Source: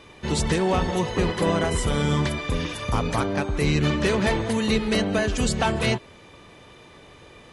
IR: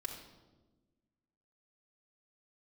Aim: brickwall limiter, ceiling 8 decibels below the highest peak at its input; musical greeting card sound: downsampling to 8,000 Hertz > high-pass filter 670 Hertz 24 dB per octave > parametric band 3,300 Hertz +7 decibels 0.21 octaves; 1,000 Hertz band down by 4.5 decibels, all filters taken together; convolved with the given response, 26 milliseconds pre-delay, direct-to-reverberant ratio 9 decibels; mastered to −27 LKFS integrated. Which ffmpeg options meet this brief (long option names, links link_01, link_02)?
-filter_complex "[0:a]equalizer=frequency=1000:width_type=o:gain=-5,alimiter=limit=-17dB:level=0:latency=1,asplit=2[link_01][link_02];[1:a]atrim=start_sample=2205,adelay=26[link_03];[link_02][link_03]afir=irnorm=-1:irlink=0,volume=-8dB[link_04];[link_01][link_04]amix=inputs=2:normalize=0,aresample=8000,aresample=44100,highpass=frequency=670:width=0.5412,highpass=frequency=670:width=1.3066,equalizer=frequency=3300:width_type=o:width=0.21:gain=7,volume=5.5dB"